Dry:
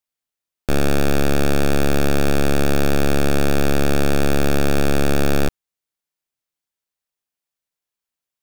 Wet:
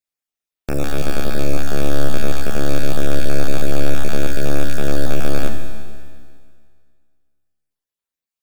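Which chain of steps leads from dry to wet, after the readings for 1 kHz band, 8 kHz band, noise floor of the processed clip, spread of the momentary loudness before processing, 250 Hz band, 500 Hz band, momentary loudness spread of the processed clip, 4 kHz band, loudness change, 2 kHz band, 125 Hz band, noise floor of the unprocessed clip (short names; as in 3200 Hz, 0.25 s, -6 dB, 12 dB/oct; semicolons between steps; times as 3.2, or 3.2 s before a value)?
-4.5 dB, -3.0 dB, under -85 dBFS, 1 LU, -4.0 dB, -3.5 dB, 5 LU, -3.0 dB, -3.5 dB, -3.5 dB, -2.0 dB, under -85 dBFS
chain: random spectral dropouts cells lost 28%; Schroeder reverb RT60 2 s, combs from 28 ms, DRR 4 dB; gain -3 dB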